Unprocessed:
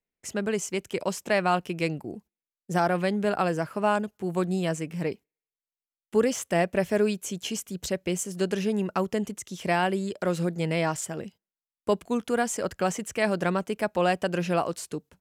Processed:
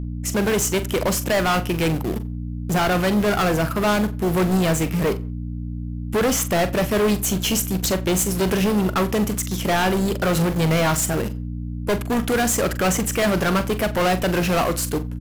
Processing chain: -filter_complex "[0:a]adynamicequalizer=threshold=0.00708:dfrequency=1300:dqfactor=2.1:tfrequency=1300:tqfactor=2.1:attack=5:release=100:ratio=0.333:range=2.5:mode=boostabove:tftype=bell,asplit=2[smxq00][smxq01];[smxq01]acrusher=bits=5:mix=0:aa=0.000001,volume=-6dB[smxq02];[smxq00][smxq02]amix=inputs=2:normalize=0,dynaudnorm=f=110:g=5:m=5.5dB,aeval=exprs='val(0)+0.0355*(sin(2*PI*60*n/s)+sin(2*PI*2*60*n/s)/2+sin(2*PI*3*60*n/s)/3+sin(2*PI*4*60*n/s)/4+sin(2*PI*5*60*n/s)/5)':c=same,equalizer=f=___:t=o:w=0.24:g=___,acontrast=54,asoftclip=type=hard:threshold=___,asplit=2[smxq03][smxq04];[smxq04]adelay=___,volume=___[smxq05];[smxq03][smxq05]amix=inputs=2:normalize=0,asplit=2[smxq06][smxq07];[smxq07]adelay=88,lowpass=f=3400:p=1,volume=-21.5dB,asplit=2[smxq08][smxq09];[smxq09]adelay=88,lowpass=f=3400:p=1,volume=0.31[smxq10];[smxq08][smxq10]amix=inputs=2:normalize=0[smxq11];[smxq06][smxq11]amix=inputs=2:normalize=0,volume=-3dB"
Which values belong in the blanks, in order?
12000, 11, -14dB, 43, -11.5dB